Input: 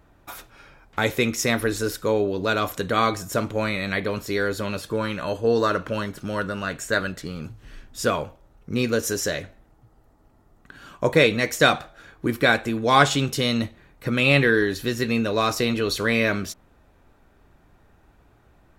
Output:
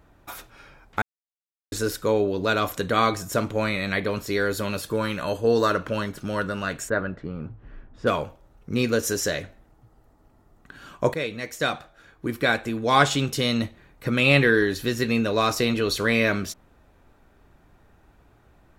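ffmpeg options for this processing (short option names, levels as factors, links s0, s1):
-filter_complex "[0:a]asettb=1/sr,asplit=3[s0][s1][s2];[s0]atrim=end=4.494[s3];[s1]atrim=start=4.49:end=5.73,asetpts=PTS-STARTPTS,afade=t=in:d=0.004:c=qsin,afade=t=out:st=1.236:d=0.004:c=qsin,highshelf=f=9600:g=9[s4];[s2]atrim=start=5.726[s5];[s3][s4]acrossfade=d=0.004:c1=hsin:c2=qsin[s6];[s6][s5]acrossfade=d=0.004:c1=qsin:c2=hsin,asplit=3[s7][s8][s9];[s7]afade=t=out:st=6.88:d=0.02[s10];[s8]lowpass=1400,afade=t=in:st=6.88:d=0.02,afade=t=out:st=8.06:d=0.02[s11];[s9]afade=t=in:st=8.06:d=0.02[s12];[s10][s11][s12]amix=inputs=3:normalize=0,asplit=4[s13][s14][s15][s16];[s13]atrim=end=1.02,asetpts=PTS-STARTPTS,afade=t=out:st=1.016:d=0.004:c=hsin[s17];[s14]atrim=start=1.02:end=1.72,asetpts=PTS-STARTPTS,volume=0[s18];[s15]atrim=start=1.72:end=11.14,asetpts=PTS-STARTPTS,afade=t=in:d=0.004:c=hsin,afade=t=out:st=9.416:d=0.004:c=hsin:silence=0.223872[s19];[s16]atrim=start=11.14,asetpts=PTS-STARTPTS,afade=t=in:d=3.39:c=qsin:silence=0.223872[s20];[s17][s18][s19][s20]concat=n=4:v=0:a=1"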